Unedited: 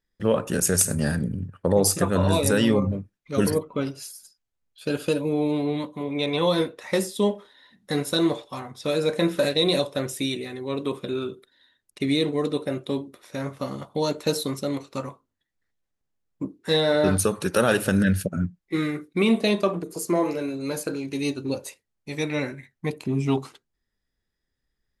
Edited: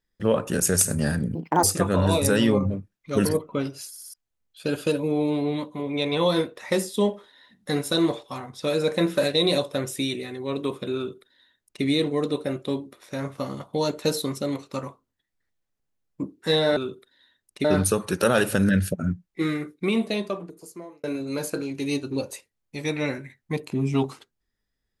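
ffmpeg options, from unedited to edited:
-filter_complex "[0:a]asplit=10[a][b][c][d][e][f][g][h][i][j];[a]atrim=end=1.354[k];[b]atrim=start=1.35:end=1.85,asetpts=PTS-STARTPTS,asetrate=77175,aresample=44100[l];[c]atrim=start=1.846:end=4.172[m];[d]atrim=start=4.108:end=4.172[n];[e]atrim=start=4.108:end=4.172[o];[f]atrim=start=4.108:end=4.172[p];[g]atrim=start=4.348:end=16.982[q];[h]atrim=start=11.168:end=12.052[r];[i]atrim=start=16.978:end=20.37,asetpts=PTS-STARTPTS,afade=t=out:st=1.792:d=1.6[s];[j]atrim=start=20.37,asetpts=PTS-STARTPTS,afade=t=in:d=0.004:c=hsin[t];[k][l]acrossfade=d=0.004:c1=hsin:c2=hsin[u];[u][m]acrossfade=d=0.004:c1=hsin:c2=hsin[v];[v][n]acrossfade=d=0.004:c1=hsin:c2=hsin[w];[w][o]acrossfade=d=0.004:c1=hsin:c2=hsin[x];[x][p]acrossfade=d=0.004:c1=hsin:c2=hsin[y];[y][q]acrossfade=d=0.004:c1=hsin:c2=hsin[z];[z][r]acrossfade=d=0.004:c1=hsin:c2=hsin[aa];[s][t]concat=n=2:v=0:a=1[ab];[aa][ab]acrossfade=d=0.004:c1=hsin:c2=hsin"

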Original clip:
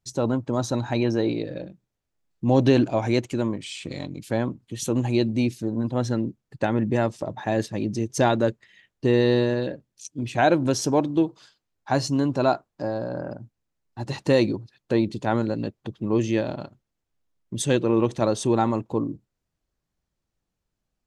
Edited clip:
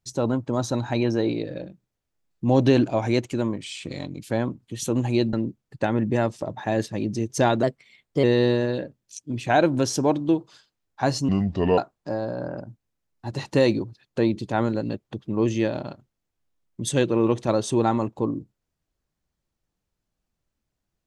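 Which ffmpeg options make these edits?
-filter_complex "[0:a]asplit=6[a][b][c][d][e][f];[a]atrim=end=5.332[g];[b]atrim=start=6.128:end=8.434[h];[c]atrim=start=8.43:end=9.12,asetpts=PTS-STARTPTS,asetrate=50274,aresample=44100,atrim=end_sample=26692,asetpts=PTS-STARTPTS[i];[d]atrim=start=9.116:end=12.174[j];[e]atrim=start=12.17:end=12.51,asetpts=PTS-STARTPTS,asetrate=30429,aresample=44100,atrim=end_sample=21730,asetpts=PTS-STARTPTS[k];[f]atrim=start=12.506[l];[g][h]acrossfade=d=0.004:c1=hsin:c2=hsin[m];[m][i]acrossfade=d=0.004:c1=hsin:c2=hsin[n];[n][j]acrossfade=d=0.004:c1=hsin:c2=hsin[o];[o][k]acrossfade=d=0.004:c1=hsin:c2=hsin[p];[p][l]acrossfade=d=0.004:c1=hsin:c2=hsin"

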